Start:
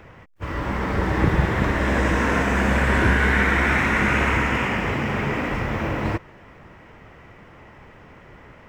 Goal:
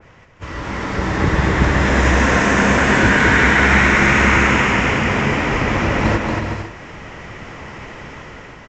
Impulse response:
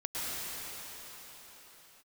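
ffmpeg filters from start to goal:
-filter_complex "[0:a]aemphasis=mode=production:type=75kf,dynaudnorm=f=500:g=5:m=14dB,asplit=2[a][b];[b]aecho=0:1:230|368|450.8|500.5|530.3:0.631|0.398|0.251|0.158|0.1[c];[a][c]amix=inputs=2:normalize=0,aresample=16000,aresample=44100,adynamicequalizer=threshold=0.0501:dfrequency=2300:dqfactor=0.7:tfrequency=2300:tqfactor=0.7:attack=5:release=100:ratio=0.375:range=1.5:mode=cutabove:tftype=highshelf,volume=-1.5dB"

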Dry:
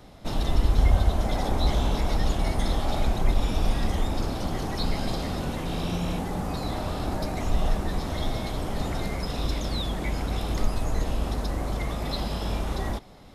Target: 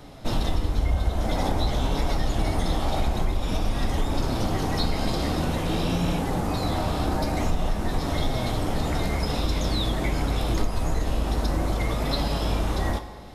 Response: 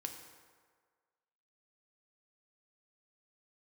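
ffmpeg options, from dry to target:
-filter_complex "[0:a]acompressor=threshold=-23dB:ratio=6,flanger=delay=7:depth=7.3:regen=64:speed=0.49:shape=sinusoidal,asplit=2[a][b];[1:a]atrim=start_sample=2205[c];[b][c]afir=irnorm=-1:irlink=0,volume=3.5dB[d];[a][d]amix=inputs=2:normalize=0,volume=2.5dB"

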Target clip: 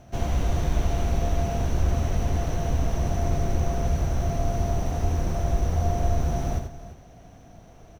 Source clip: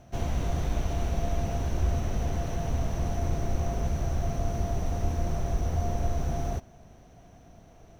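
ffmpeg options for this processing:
-af "aecho=1:1:83|344:0.473|0.178,volume=3dB"

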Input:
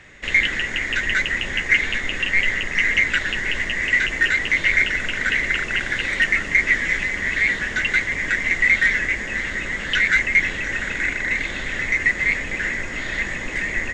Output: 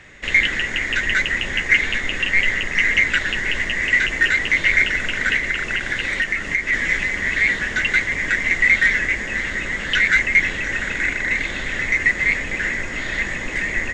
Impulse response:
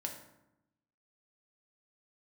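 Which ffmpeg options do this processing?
-filter_complex "[0:a]asplit=3[a][b][c];[a]afade=t=out:st=5.37:d=0.02[d];[b]acompressor=threshold=-19dB:ratio=6,afade=t=in:st=5.37:d=0.02,afade=t=out:st=6.72:d=0.02[e];[c]afade=t=in:st=6.72:d=0.02[f];[d][e][f]amix=inputs=3:normalize=0,volume=1.5dB"

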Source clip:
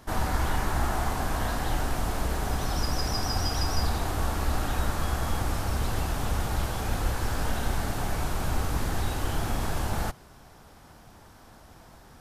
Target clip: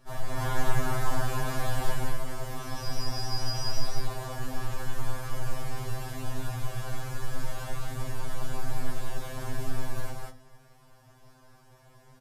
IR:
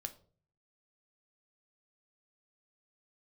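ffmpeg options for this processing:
-filter_complex "[0:a]asettb=1/sr,asplit=3[a][b][c];[a]atrim=end=0.374[d];[b]atrim=start=0.37:end=1.94,asetpts=PTS-STARTPTS,afade=t=in:d=0.004:c=qsin,afade=t=out:st=1.566:d=0.004:c=qsin,acontrast=32[e];[c]atrim=start=1.936[f];[d][e]acrossfade=d=0.004:c1=hsin:c2=qsin[g];[g][f]acrossfade=d=0.004:c1=qsin:c2=hsin,aecho=1:1:34.99|189.5:0.355|0.891[h];[1:a]atrim=start_sample=2205[i];[h][i]afir=irnorm=-1:irlink=0,afftfilt=real='re*2.45*eq(mod(b,6),0)':imag='im*2.45*eq(mod(b,6),0)':win_size=2048:overlap=0.75,volume=-4dB"

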